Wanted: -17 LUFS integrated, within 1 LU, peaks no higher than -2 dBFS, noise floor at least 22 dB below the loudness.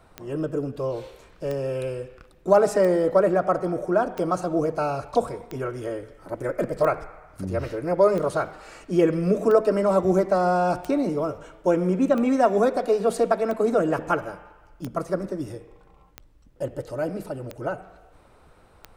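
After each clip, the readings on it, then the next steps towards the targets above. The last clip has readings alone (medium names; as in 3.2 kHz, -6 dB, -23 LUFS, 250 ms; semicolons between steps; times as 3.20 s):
clicks found 15; loudness -24.0 LUFS; peak level -5.5 dBFS; loudness target -17.0 LUFS
-> de-click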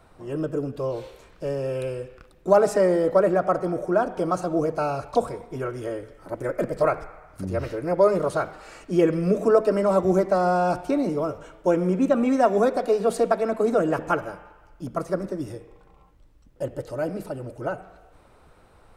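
clicks found 0; loudness -24.0 LUFS; peak level -5.5 dBFS; loudness target -17.0 LUFS
-> trim +7 dB; peak limiter -2 dBFS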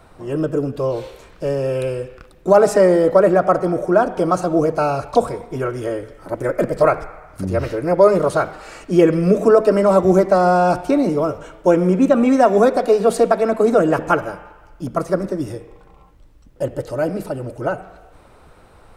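loudness -17.0 LUFS; peak level -2.0 dBFS; noise floor -48 dBFS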